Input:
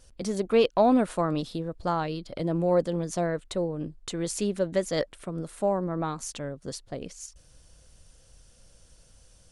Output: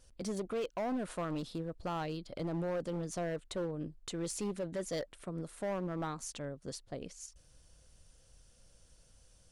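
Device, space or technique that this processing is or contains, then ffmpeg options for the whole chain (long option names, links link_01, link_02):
limiter into clipper: -af "alimiter=limit=-19dB:level=0:latency=1:release=36,asoftclip=type=hard:threshold=-25dB,volume=-6.5dB"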